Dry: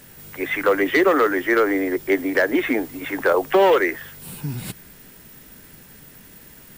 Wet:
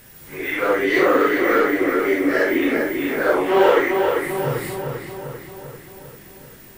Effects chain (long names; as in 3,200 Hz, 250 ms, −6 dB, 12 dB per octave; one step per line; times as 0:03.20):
random phases in long frames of 200 ms
feedback echo with a low-pass in the loop 394 ms, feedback 58%, low-pass 4,500 Hz, level −5 dB